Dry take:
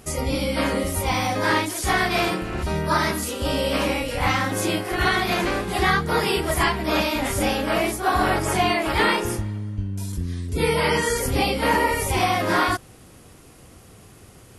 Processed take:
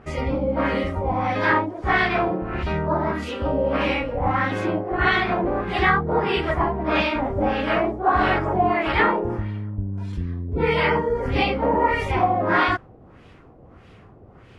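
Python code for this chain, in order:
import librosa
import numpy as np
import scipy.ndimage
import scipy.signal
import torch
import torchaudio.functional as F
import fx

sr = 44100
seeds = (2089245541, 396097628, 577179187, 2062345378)

y = fx.mod_noise(x, sr, seeds[0], snr_db=26, at=(7.04, 8.77))
y = fx.filter_lfo_lowpass(y, sr, shape='sine', hz=1.6, low_hz=660.0, high_hz=2900.0, q=1.4)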